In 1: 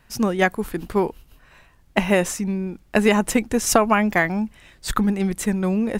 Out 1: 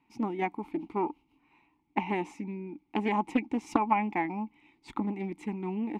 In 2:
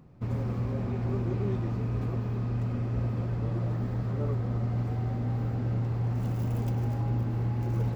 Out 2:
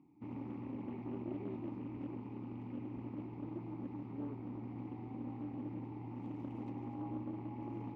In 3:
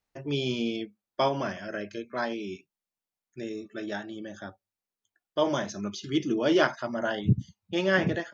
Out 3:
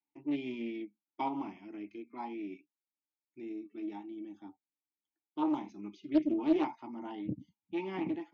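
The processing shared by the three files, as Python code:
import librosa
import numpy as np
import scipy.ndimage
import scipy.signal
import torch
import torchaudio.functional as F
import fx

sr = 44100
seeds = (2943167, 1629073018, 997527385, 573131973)

y = fx.vowel_filter(x, sr, vowel='u')
y = fx.dynamic_eq(y, sr, hz=780.0, q=2.4, threshold_db=-52.0, ratio=4.0, max_db=5)
y = fx.doppler_dist(y, sr, depth_ms=0.29)
y = y * 10.0 ** (2.5 / 20.0)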